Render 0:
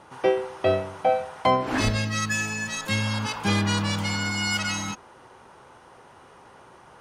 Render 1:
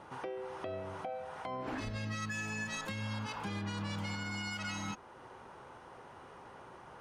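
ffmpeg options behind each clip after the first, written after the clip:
-af "highshelf=f=4.2k:g=-8,acompressor=threshold=-26dB:ratio=5,alimiter=level_in=3.5dB:limit=-24dB:level=0:latency=1:release=380,volume=-3.5dB,volume=-2dB"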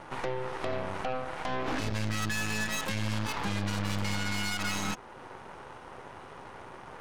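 -af "aeval=exprs='0.0355*(cos(1*acos(clip(val(0)/0.0355,-1,1)))-cos(1*PI/2))+0.00891*(cos(6*acos(clip(val(0)/0.0355,-1,1)))-cos(6*PI/2))':c=same,volume=5.5dB"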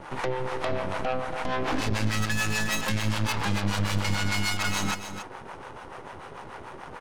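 -filter_complex "[0:a]acrossover=split=510[a][b];[a]aeval=exprs='val(0)*(1-0.7/2+0.7/2*cos(2*PI*6.8*n/s))':c=same[c];[b]aeval=exprs='val(0)*(1-0.7/2-0.7/2*cos(2*PI*6.8*n/s))':c=same[d];[c][d]amix=inputs=2:normalize=0,asplit=2[e][f];[f]aecho=0:1:279:0.316[g];[e][g]amix=inputs=2:normalize=0,volume=7.5dB"

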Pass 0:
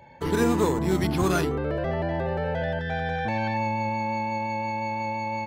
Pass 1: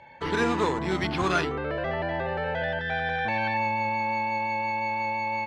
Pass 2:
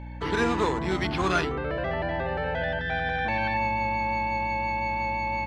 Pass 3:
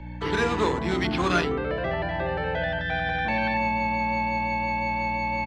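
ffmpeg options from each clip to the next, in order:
-af "lowpass=3.5k,tiltshelf=f=730:g=-6.5"
-af "aeval=exprs='val(0)+0.0141*(sin(2*PI*60*n/s)+sin(2*PI*2*60*n/s)/2+sin(2*PI*3*60*n/s)/3+sin(2*PI*4*60*n/s)/4+sin(2*PI*5*60*n/s)/5)':c=same"
-filter_complex "[0:a]acrossover=split=110|630|4100[a][b][c][d];[b]aecho=1:1:23|50:0.631|0.562[e];[c]crystalizer=i=2:c=0[f];[a][e][f][d]amix=inputs=4:normalize=0"

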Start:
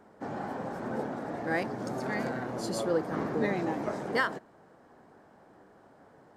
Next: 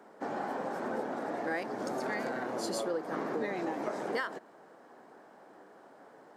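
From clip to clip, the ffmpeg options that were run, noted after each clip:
-af "highpass=280,acompressor=threshold=-34dB:ratio=5,volume=3dB"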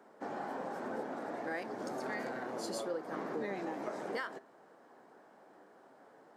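-af "flanger=delay=7.5:depth=8.5:regen=82:speed=0.68:shape=sinusoidal"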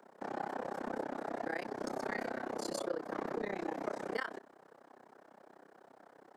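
-filter_complex "[0:a]tremolo=f=32:d=1,acrossover=split=230|630|3700[a][b][c][d];[a]aeval=exprs='clip(val(0),-1,0.00188)':c=same[e];[e][b][c][d]amix=inputs=4:normalize=0,volume=4.5dB"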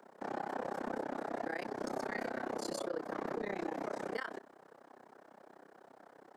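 -af "alimiter=level_in=4.5dB:limit=-24dB:level=0:latency=1:release=48,volume=-4.5dB,volume=1dB"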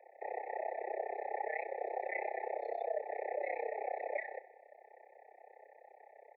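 -af "aecho=1:1:67|134|201|268|335:0.119|0.0689|0.04|0.0232|0.0134,highpass=f=320:t=q:w=0.5412,highpass=f=320:t=q:w=1.307,lowpass=f=2.5k:t=q:w=0.5176,lowpass=f=2.5k:t=q:w=0.7071,lowpass=f=2.5k:t=q:w=1.932,afreqshift=130,afftfilt=real='re*eq(mod(floor(b*sr/1024/880),2),0)':imag='im*eq(mod(floor(b*sr/1024/880),2),0)':win_size=1024:overlap=0.75,volume=2.5dB"

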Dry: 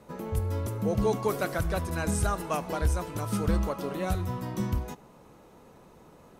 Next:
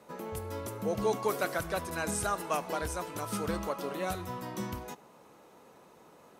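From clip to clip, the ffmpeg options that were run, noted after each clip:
-af "highpass=f=400:p=1"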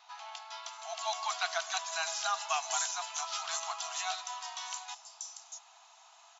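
-filter_complex "[0:a]aexciter=amount=3.8:drive=5.5:freq=2.8k,acrossover=split=5500[a][b];[b]adelay=640[c];[a][c]amix=inputs=2:normalize=0,afftfilt=real='re*between(b*sr/4096,640,7500)':imag='im*between(b*sr/4096,640,7500)':win_size=4096:overlap=0.75"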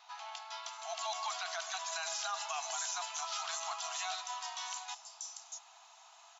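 -af "alimiter=level_in=4.5dB:limit=-24dB:level=0:latency=1:release=29,volume=-4.5dB"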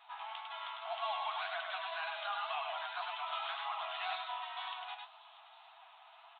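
-af "aecho=1:1:101:0.668,aresample=8000,aresample=44100,flanger=delay=7.1:depth=8.7:regen=35:speed=1.9:shape=sinusoidal,volume=4dB"

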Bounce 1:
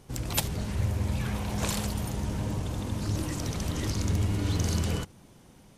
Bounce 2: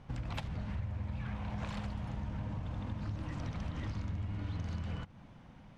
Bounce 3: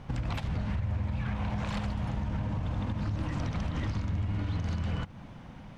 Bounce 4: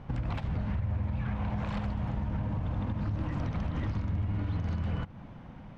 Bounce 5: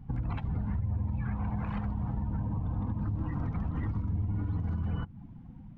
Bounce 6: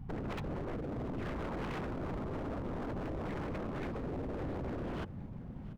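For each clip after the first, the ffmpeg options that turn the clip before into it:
-af "lowpass=2.4k,equalizer=f=390:t=o:w=0.7:g=-11,acompressor=threshold=-37dB:ratio=6,volume=1.5dB"
-af "alimiter=level_in=8dB:limit=-24dB:level=0:latency=1:release=70,volume=-8dB,volume=8.5dB"
-af "lowpass=f=1.9k:p=1"
-af "afftdn=nr=16:nf=-44,equalizer=f=580:t=o:w=0.25:g=-13.5,bandreject=f=360:w=12"
-af "aeval=exprs='0.0168*(abs(mod(val(0)/0.0168+3,4)-2)-1)':c=same,aecho=1:1:687|1374|2061|2748:0.126|0.0592|0.0278|0.0131,volume=2dB"

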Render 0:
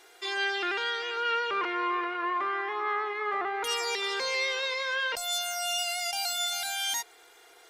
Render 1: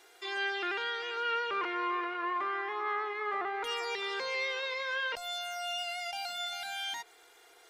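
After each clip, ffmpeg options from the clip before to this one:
-filter_complex "[0:a]acrossover=split=3900[a][b];[b]acompressor=threshold=-48dB:ratio=4:attack=1:release=60[c];[a][c]amix=inputs=2:normalize=0,volume=-3.5dB"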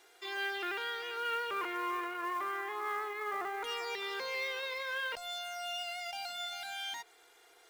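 -af "acrusher=bits=5:mode=log:mix=0:aa=0.000001,volume=-3dB"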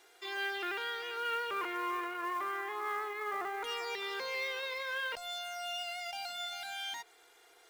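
-af anull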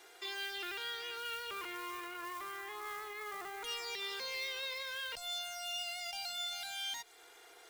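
-filter_complex "[0:a]acrossover=split=160|3000[a][b][c];[b]acompressor=threshold=-54dB:ratio=2.5[d];[a][d][c]amix=inputs=3:normalize=0,volume=4dB"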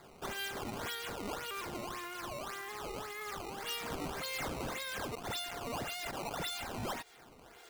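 -af "acrusher=samples=15:mix=1:aa=0.000001:lfo=1:lforange=24:lforate=1.8,volume=1.5dB"

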